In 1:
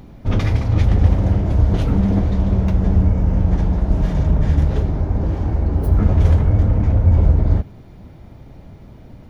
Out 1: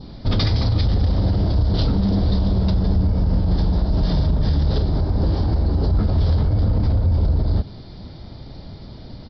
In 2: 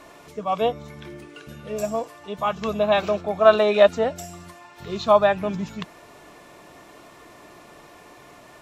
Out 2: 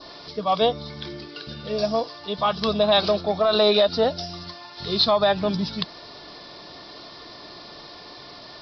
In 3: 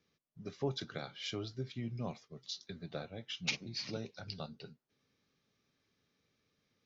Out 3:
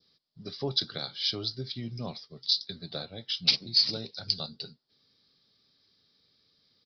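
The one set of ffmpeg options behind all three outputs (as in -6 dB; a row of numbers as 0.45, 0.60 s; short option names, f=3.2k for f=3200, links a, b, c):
-af "adynamicequalizer=threshold=0.00501:dfrequency=2100:dqfactor=1.8:tfrequency=2100:tqfactor=1.8:attack=5:release=100:ratio=0.375:range=2:mode=cutabove:tftype=bell,alimiter=limit=-13dB:level=0:latency=1:release=73,aexciter=amount=5.9:drive=8.5:freq=3.8k,aresample=11025,aeval=exprs='0.631*sin(PI/2*1.78*val(0)/0.631)':c=same,aresample=44100,volume=-6dB"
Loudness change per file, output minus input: -2.5, -0.5, +12.5 LU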